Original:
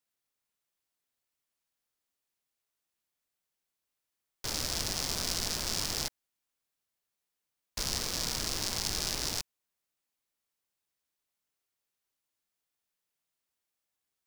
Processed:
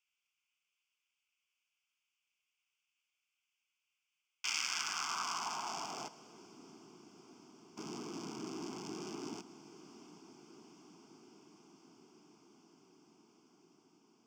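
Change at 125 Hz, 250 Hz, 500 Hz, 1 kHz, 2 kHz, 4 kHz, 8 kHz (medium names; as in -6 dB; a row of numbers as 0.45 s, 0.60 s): -13.5 dB, -0.5 dB, -4.5 dB, +2.0 dB, -2.0 dB, -9.5 dB, -10.0 dB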